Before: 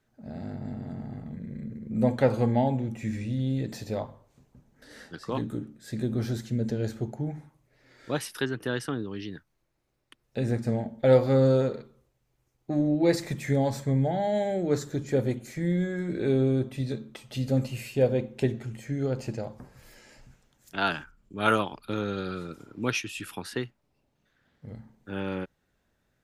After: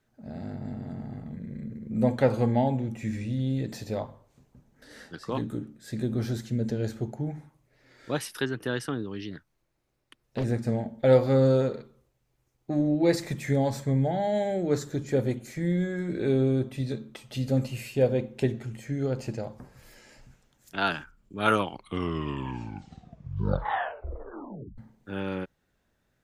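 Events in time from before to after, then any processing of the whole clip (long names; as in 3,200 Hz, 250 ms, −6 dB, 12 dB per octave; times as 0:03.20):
0:09.31–0:10.44: highs frequency-modulated by the lows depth 0.89 ms
0:21.47: tape stop 3.31 s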